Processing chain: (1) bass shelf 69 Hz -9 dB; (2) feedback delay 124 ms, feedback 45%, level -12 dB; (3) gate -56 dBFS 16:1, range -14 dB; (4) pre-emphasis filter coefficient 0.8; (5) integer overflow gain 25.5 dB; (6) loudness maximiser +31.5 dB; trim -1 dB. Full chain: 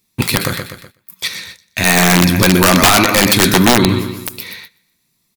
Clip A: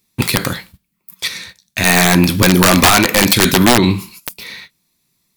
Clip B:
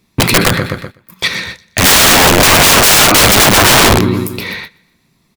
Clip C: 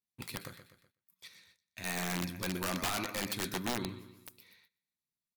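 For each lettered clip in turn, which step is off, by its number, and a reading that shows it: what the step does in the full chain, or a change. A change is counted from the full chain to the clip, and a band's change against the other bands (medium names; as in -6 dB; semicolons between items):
2, momentary loudness spread change +3 LU; 4, 250 Hz band -6.0 dB; 6, momentary loudness spread change +3 LU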